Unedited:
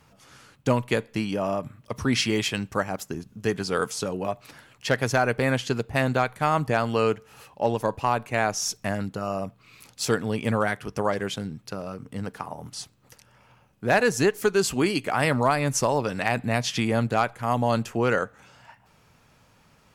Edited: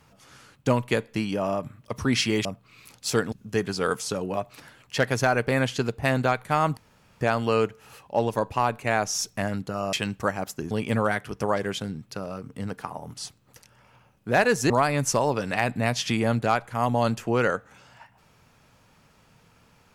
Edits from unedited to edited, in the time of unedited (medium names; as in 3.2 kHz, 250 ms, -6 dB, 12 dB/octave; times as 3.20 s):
2.45–3.23 s: swap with 9.40–10.27 s
6.68 s: insert room tone 0.44 s
14.26–15.38 s: delete